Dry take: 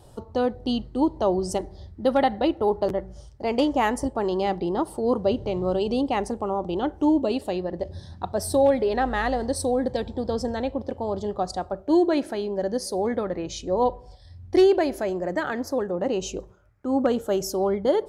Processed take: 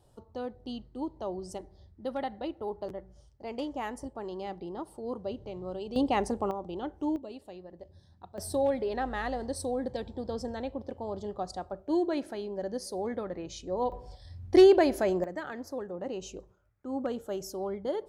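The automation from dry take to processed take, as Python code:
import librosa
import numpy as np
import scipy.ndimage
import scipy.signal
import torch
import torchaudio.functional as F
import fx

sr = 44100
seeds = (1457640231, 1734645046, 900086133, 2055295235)

y = fx.gain(x, sr, db=fx.steps((0.0, -13.5), (5.96, -2.5), (6.51, -10.5), (7.16, -18.5), (8.38, -8.5), (13.92, -0.5), (15.24, -11.0)))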